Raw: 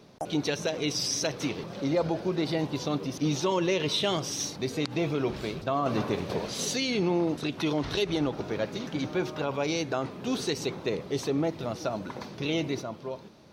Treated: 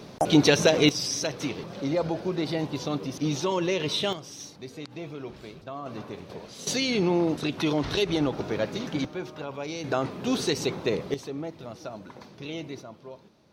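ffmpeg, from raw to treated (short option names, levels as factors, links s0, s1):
-af "asetnsamples=n=441:p=0,asendcmd='0.89 volume volume 0dB;4.13 volume volume -9.5dB;6.67 volume volume 2.5dB;9.05 volume volume -5.5dB;9.84 volume volume 3.5dB;11.14 volume volume -7dB',volume=3.16"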